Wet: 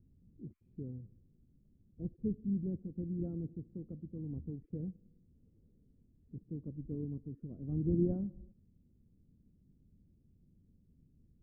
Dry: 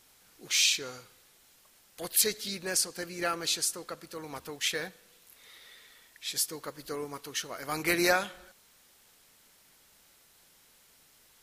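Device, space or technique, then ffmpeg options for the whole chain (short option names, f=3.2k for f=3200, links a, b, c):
the neighbour's flat through the wall: -af "lowpass=f=240:w=0.5412,lowpass=f=240:w=1.3066,equalizer=f=82:t=o:w=0.68:g=5,volume=9.5dB"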